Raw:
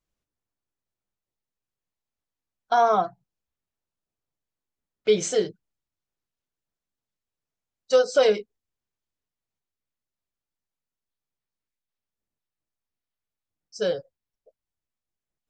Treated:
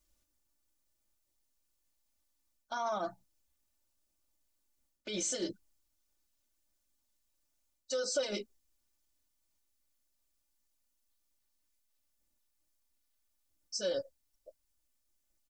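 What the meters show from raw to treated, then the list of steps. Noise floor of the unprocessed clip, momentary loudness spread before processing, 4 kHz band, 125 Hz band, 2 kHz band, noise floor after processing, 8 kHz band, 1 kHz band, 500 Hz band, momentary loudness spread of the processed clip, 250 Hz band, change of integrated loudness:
below −85 dBFS, 11 LU, −6.5 dB, −12.5 dB, −12.0 dB, −80 dBFS, −3.0 dB, −16.0 dB, −15.0 dB, 15 LU, −8.0 dB, −13.0 dB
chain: bass and treble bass −1 dB, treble +10 dB
reversed playback
downward compressor 6 to 1, threshold −26 dBFS, peak gain reduction 12.5 dB
reversed playback
low-shelf EQ 110 Hz +6 dB
brickwall limiter −28.5 dBFS, peak gain reduction 11 dB
comb filter 3.4 ms, depth 95%

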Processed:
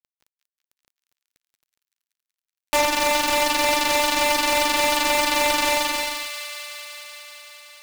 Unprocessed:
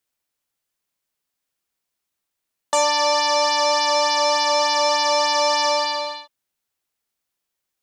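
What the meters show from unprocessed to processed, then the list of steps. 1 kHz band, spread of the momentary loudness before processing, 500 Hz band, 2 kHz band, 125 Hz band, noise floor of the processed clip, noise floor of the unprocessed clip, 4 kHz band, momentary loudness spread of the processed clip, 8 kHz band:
−3.0 dB, 6 LU, −3.0 dB, +3.5 dB, can't be measured, below −85 dBFS, −81 dBFS, −2.5 dB, 16 LU, +1.0 dB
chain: gap after every zero crossing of 0.3 ms
reversed playback
upward compression, threshold −40 dBFS
reversed playback
delay with a high-pass on its return 189 ms, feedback 81%, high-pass 1,700 Hz, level −9.5 dB
level +2.5 dB

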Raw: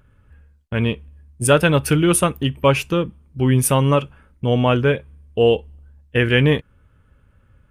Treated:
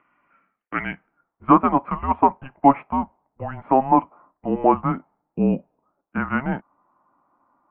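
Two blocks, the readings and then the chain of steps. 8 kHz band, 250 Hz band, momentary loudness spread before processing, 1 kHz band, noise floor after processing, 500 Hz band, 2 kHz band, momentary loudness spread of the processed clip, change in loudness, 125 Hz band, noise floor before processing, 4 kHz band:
below −40 dB, −1.5 dB, 10 LU, +6.5 dB, −81 dBFS, −7.5 dB, −9.0 dB, 16 LU, −3.0 dB, −13.0 dB, −57 dBFS, below −25 dB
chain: single-sideband voice off tune −270 Hz 550–3,500 Hz
high-frequency loss of the air 340 metres
low-pass filter sweep 2,300 Hz → 930 Hz, 0:00.45–0:01.64
level +2 dB

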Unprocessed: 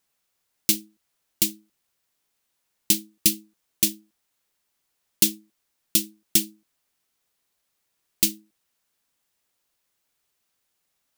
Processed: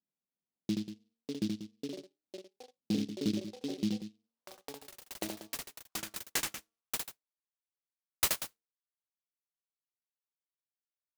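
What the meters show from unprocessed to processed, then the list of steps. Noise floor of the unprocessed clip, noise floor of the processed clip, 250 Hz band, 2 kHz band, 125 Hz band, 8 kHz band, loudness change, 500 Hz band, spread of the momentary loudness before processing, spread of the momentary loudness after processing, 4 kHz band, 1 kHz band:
−76 dBFS, below −85 dBFS, −2.0 dB, −4.0 dB, −1.0 dB, −14.0 dB, −13.5 dB, +0.5 dB, 4 LU, 17 LU, −11.5 dB, can't be measured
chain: sub-octave generator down 1 octave, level −4 dB
reverb reduction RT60 0.71 s
noise gate −47 dBFS, range −8 dB
low-pass that shuts in the quiet parts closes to 690 Hz, open at −22 dBFS
parametric band 1,300 Hz +12.5 dB 2.2 octaves
hum removal 229.1 Hz, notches 6
in parallel at +3 dB: brickwall limiter −11.5 dBFS, peak gain reduction 9 dB
on the sum: band-pass filter sweep 210 Hz → 5,400 Hz, 0:04.01–0:07.36
on a send: multi-tap delay 77/188 ms −4/−11.5 dB
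on the sum: delay with pitch and tempo change per echo 771 ms, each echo +5 semitones, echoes 3, each echo −6 dB
short delay modulated by noise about 3,800 Hz, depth 0.11 ms
level −5.5 dB

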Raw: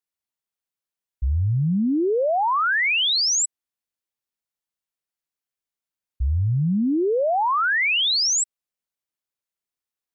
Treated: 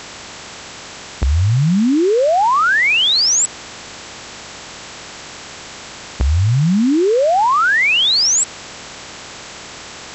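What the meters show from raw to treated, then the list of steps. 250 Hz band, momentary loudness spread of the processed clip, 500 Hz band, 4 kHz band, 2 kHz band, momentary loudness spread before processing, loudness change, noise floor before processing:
+7.0 dB, 22 LU, +7.0 dB, +7.0 dB, +7.0 dB, 9 LU, +7.0 dB, below −85 dBFS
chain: compressor on every frequency bin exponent 0.4
level +5.5 dB

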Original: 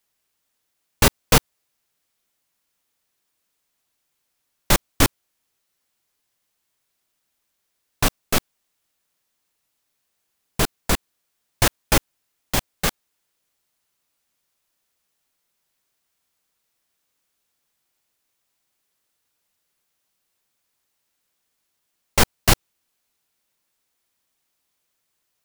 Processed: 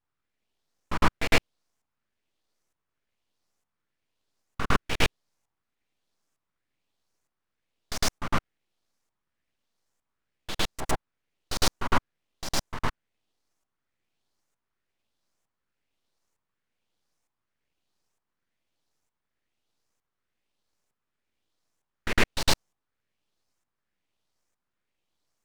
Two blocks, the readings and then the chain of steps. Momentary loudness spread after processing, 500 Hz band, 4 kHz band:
12 LU, −7.0 dB, −5.5 dB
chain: auto-filter band-pass saw up 1.1 Hz 400–3,600 Hz
full-wave rectification
backwards echo 107 ms −8 dB
level +7 dB

